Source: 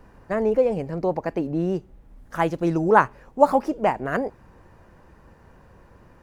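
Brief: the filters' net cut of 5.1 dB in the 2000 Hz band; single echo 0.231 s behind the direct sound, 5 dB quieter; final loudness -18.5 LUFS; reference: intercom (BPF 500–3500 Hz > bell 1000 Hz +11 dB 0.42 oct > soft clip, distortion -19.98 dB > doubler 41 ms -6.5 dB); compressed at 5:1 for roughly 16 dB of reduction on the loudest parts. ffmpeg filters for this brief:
-filter_complex "[0:a]equalizer=f=2k:t=o:g=-9,acompressor=threshold=-29dB:ratio=5,highpass=500,lowpass=3.5k,equalizer=f=1k:t=o:w=0.42:g=11,aecho=1:1:231:0.562,asoftclip=threshold=-18dB,asplit=2[a][b];[b]adelay=41,volume=-6.5dB[c];[a][c]amix=inputs=2:normalize=0,volume=15dB"

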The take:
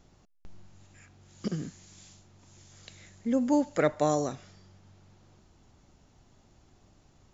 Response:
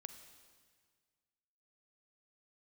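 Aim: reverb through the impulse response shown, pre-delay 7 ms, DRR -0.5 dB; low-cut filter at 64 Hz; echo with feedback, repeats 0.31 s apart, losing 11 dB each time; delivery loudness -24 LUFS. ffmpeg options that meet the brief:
-filter_complex "[0:a]highpass=64,aecho=1:1:310|620|930:0.282|0.0789|0.0221,asplit=2[a][b];[1:a]atrim=start_sample=2205,adelay=7[c];[b][c]afir=irnorm=-1:irlink=0,volume=5.5dB[d];[a][d]amix=inputs=2:normalize=0,volume=1.5dB"

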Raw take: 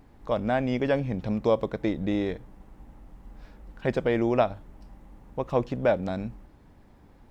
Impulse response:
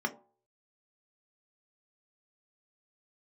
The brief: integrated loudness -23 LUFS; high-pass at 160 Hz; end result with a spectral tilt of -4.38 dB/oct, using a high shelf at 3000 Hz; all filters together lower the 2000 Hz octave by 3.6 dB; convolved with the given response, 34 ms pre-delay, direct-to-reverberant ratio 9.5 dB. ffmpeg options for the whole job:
-filter_complex "[0:a]highpass=160,equalizer=f=2k:t=o:g=-3,highshelf=f=3k:g=-5,asplit=2[a][b];[1:a]atrim=start_sample=2205,adelay=34[c];[b][c]afir=irnorm=-1:irlink=0,volume=-15.5dB[d];[a][d]amix=inputs=2:normalize=0,volume=5dB"

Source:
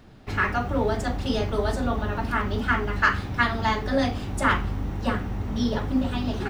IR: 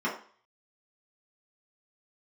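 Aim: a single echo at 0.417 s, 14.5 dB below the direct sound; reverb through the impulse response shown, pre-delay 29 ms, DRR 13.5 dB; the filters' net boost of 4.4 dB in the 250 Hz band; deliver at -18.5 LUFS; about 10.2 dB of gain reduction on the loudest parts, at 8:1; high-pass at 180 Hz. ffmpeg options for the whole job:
-filter_complex "[0:a]highpass=180,equalizer=f=250:t=o:g=6,acompressor=threshold=-25dB:ratio=8,aecho=1:1:417:0.188,asplit=2[a][b];[1:a]atrim=start_sample=2205,adelay=29[c];[b][c]afir=irnorm=-1:irlink=0,volume=-23.5dB[d];[a][d]amix=inputs=2:normalize=0,volume=11dB"

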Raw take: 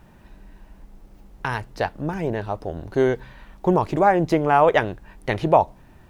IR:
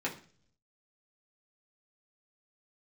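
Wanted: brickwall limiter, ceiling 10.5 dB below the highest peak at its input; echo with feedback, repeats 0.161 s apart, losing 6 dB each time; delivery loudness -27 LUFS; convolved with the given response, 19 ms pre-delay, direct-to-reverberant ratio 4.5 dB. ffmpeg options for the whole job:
-filter_complex "[0:a]alimiter=limit=-13dB:level=0:latency=1,aecho=1:1:161|322|483|644|805|966:0.501|0.251|0.125|0.0626|0.0313|0.0157,asplit=2[a][b];[1:a]atrim=start_sample=2205,adelay=19[c];[b][c]afir=irnorm=-1:irlink=0,volume=-10dB[d];[a][d]amix=inputs=2:normalize=0,volume=-3.5dB"

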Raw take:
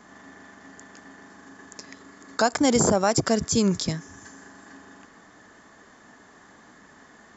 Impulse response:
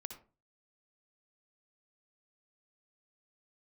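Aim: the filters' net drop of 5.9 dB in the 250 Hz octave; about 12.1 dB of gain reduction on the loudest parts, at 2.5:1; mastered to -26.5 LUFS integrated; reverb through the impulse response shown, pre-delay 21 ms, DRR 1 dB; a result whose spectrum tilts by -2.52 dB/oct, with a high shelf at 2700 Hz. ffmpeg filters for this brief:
-filter_complex "[0:a]equalizer=f=250:t=o:g=-7.5,highshelf=f=2.7k:g=5.5,acompressor=threshold=-35dB:ratio=2.5,asplit=2[a][b];[1:a]atrim=start_sample=2205,adelay=21[c];[b][c]afir=irnorm=-1:irlink=0,volume=2.5dB[d];[a][d]amix=inputs=2:normalize=0,volume=7.5dB"

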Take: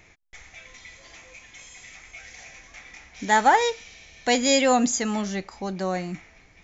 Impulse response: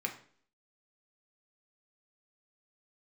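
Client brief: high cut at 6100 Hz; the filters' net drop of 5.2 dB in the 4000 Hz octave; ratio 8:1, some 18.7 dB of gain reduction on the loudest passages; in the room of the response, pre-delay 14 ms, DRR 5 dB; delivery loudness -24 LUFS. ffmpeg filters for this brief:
-filter_complex "[0:a]lowpass=6.1k,equalizer=f=4k:t=o:g=-6,acompressor=threshold=-33dB:ratio=8,asplit=2[a][b];[1:a]atrim=start_sample=2205,adelay=14[c];[b][c]afir=irnorm=-1:irlink=0,volume=-8dB[d];[a][d]amix=inputs=2:normalize=0,volume=15dB"

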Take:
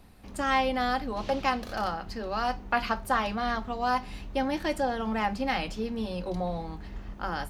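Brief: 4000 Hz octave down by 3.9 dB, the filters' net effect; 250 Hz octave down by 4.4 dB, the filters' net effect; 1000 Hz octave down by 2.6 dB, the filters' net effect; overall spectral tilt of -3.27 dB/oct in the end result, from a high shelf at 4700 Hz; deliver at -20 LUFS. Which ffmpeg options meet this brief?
-af "equalizer=f=250:t=o:g=-5,equalizer=f=1k:t=o:g=-3,equalizer=f=4k:t=o:g=-3.5,highshelf=f=4.7k:g=-3.5,volume=12.5dB"

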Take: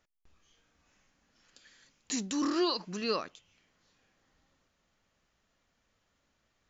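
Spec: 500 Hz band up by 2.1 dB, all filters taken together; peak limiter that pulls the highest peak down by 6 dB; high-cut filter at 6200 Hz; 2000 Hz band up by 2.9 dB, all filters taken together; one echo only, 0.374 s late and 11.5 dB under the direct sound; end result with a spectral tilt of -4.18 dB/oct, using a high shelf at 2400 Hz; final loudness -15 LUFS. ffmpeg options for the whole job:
-af "lowpass=6.2k,equalizer=f=500:t=o:g=3,equalizer=f=2k:t=o:g=7,highshelf=f=2.4k:g=-5.5,alimiter=limit=-24dB:level=0:latency=1,aecho=1:1:374:0.266,volume=19.5dB"

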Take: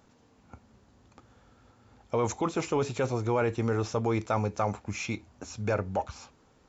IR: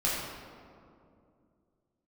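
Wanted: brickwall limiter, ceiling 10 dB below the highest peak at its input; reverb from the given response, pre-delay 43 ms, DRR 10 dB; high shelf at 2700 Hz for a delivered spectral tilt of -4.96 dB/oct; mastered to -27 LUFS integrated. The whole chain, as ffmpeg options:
-filter_complex "[0:a]highshelf=f=2.7k:g=4,alimiter=limit=-24dB:level=0:latency=1,asplit=2[a][b];[1:a]atrim=start_sample=2205,adelay=43[c];[b][c]afir=irnorm=-1:irlink=0,volume=-19.5dB[d];[a][d]amix=inputs=2:normalize=0,volume=8dB"

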